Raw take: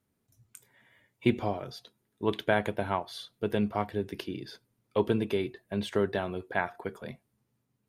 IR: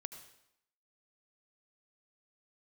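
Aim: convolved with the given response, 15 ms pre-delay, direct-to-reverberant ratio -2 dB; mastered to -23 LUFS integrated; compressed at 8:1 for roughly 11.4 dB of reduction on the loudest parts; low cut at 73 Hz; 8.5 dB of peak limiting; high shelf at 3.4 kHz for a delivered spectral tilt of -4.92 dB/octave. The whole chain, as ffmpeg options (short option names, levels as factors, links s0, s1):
-filter_complex "[0:a]highpass=73,highshelf=f=3400:g=-7,acompressor=threshold=0.0251:ratio=8,alimiter=level_in=1.33:limit=0.0631:level=0:latency=1,volume=0.75,asplit=2[s0][s1];[1:a]atrim=start_sample=2205,adelay=15[s2];[s1][s2]afir=irnorm=-1:irlink=0,volume=1.88[s3];[s0][s3]amix=inputs=2:normalize=0,volume=5.01"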